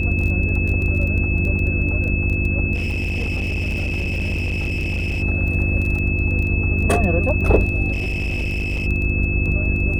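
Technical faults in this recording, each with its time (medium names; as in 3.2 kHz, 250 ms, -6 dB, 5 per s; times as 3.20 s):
crackle 16 per s -25 dBFS
hum 50 Hz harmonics 7 -24 dBFS
whine 2.6 kHz -24 dBFS
2.74–5.23 s: clipped -19 dBFS
7.92–8.87 s: clipped -19 dBFS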